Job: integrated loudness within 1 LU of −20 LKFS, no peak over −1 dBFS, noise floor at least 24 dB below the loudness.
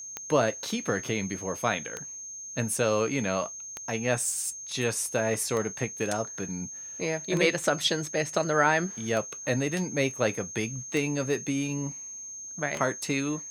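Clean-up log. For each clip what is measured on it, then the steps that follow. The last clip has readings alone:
number of clicks 8; interfering tone 6,400 Hz; level of the tone −38 dBFS; integrated loudness −28.5 LKFS; sample peak −8.0 dBFS; target loudness −20.0 LKFS
→ click removal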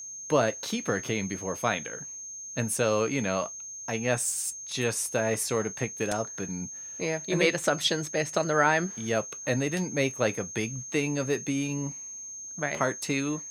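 number of clicks 0; interfering tone 6,400 Hz; level of the tone −38 dBFS
→ notch filter 6,400 Hz, Q 30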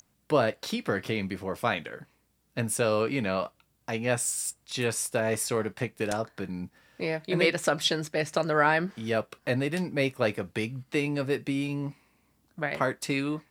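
interfering tone none found; integrated loudness −29.0 LKFS; sample peak −8.5 dBFS; target loudness −20.0 LKFS
→ level +9 dB
brickwall limiter −1 dBFS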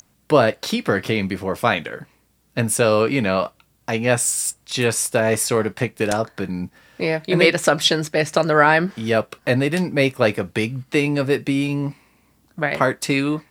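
integrated loudness −20.0 LKFS; sample peak −1.0 dBFS; background noise floor −61 dBFS

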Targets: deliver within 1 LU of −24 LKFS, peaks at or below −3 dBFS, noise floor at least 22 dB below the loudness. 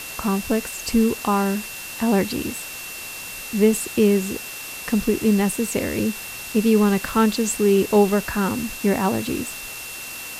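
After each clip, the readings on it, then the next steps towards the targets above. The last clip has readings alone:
interfering tone 2,700 Hz; level of the tone −36 dBFS; background noise floor −34 dBFS; target noise floor −44 dBFS; integrated loudness −22.0 LKFS; sample peak −5.5 dBFS; target loudness −24.0 LKFS
→ notch filter 2,700 Hz, Q 30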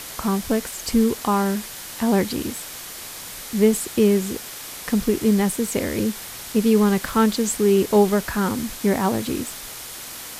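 interfering tone none found; background noise floor −36 dBFS; target noise floor −44 dBFS
→ broadband denoise 8 dB, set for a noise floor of −36 dBFS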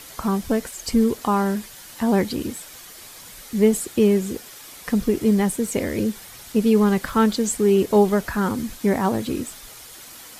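background noise floor −42 dBFS; target noise floor −44 dBFS
→ broadband denoise 6 dB, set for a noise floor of −42 dBFS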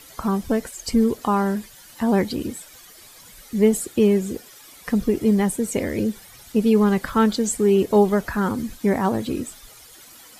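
background noise floor −47 dBFS; integrated loudness −21.5 LKFS; sample peak −5.5 dBFS; target loudness −24.0 LKFS
→ level −2.5 dB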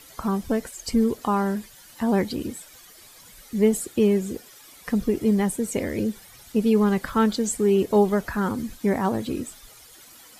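integrated loudness −24.0 LKFS; sample peak −8.0 dBFS; background noise floor −49 dBFS

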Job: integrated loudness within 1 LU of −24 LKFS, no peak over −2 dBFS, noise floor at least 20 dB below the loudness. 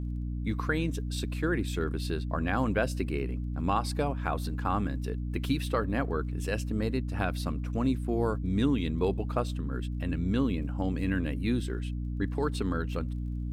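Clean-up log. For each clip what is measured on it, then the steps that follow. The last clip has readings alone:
crackle rate 21 per second; mains hum 60 Hz; hum harmonics up to 300 Hz; level of the hum −31 dBFS; integrated loudness −31.0 LKFS; sample peak −14.0 dBFS; target loudness −24.0 LKFS
→ click removal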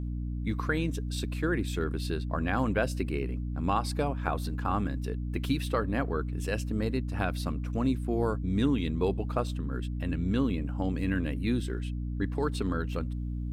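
crackle rate 0.22 per second; mains hum 60 Hz; hum harmonics up to 300 Hz; level of the hum −31 dBFS
→ mains-hum notches 60/120/180/240/300 Hz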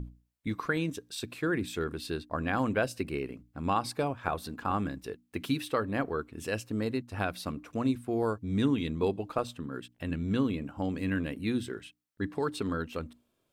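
mains hum none found; integrated loudness −33.0 LKFS; sample peak −12.0 dBFS; target loudness −24.0 LKFS
→ level +9 dB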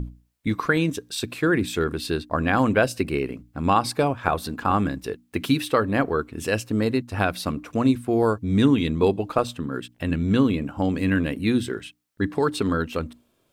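integrated loudness −24.0 LKFS; sample peak −3.0 dBFS; background noise floor −67 dBFS

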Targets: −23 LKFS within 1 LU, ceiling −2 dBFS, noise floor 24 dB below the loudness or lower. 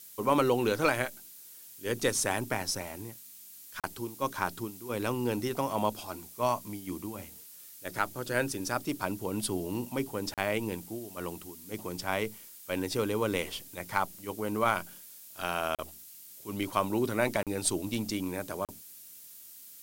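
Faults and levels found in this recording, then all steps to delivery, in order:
number of dropouts 5; longest dropout 37 ms; background noise floor −50 dBFS; target noise floor −57 dBFS; integrated loudness −32.5 LKFS; sample peak −12.0 dBFS; target loudness −23.0 LKFS
→ repair the gap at 0:03.80/0:10.34/0:15.75/0:17.43/0:18.65, 37 ms
noise reduction from a noise print 7 dB
level +9.5 dB

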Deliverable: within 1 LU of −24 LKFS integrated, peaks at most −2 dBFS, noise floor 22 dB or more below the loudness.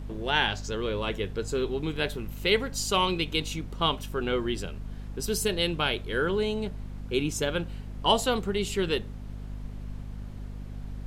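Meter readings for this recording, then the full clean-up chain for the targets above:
mains hum 50 Hz; hum harmonics up to 250 Hz; level of the hum −36 dBFS; background noise floor −40 dBFS; target noise floor −51 dBFS; integrated loudness −28.5 LKFS; sample peak −8.5 dBFS; target loudness −24.0 LKFS
→ hum removal 50 Hz, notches 5
noise reduction from a noise print 11 dB
level +4.5 dB

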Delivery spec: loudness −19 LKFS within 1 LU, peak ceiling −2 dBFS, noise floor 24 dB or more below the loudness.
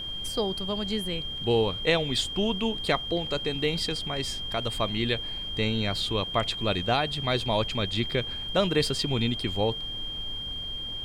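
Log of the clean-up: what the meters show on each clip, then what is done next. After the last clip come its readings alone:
interfering tone 3,200 Hz; level of the tone −33 dBFS; background noise floor −35 dBFS; target noise floor −52 dBFS; integrated loudness −27.5 LKFS; sample peak −11.0 dBFS; target loudness −19.0 LKFS
→ notch filter 3,200 Hz, Q 30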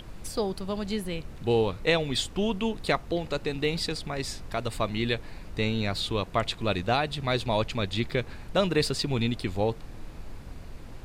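interfering tone none found; background noise floor −44 dBFS; target noise floor −53 dBFS
→ noise reduction from a noise print 9 dB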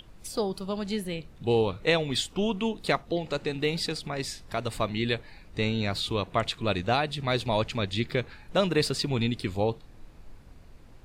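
background noise floor −51 dBFS; target noise floor −53 dBFS
→ noise reduction from a noise print 6 dB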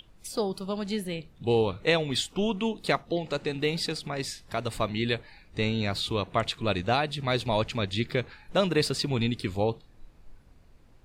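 background noise floor −56 dBFS; integrated loudness −29.0 LKFS; sample peak −11.0 dBFS; target loudness −19.0 LKFS
→ level +10 dB
brickwall limiter −2 dBFS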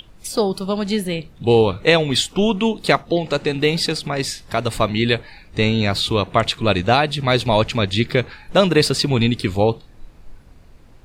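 integrated loudness −19.0 LKFS; sample peak −2.0 dBFS; background noise floor −46 dBFS

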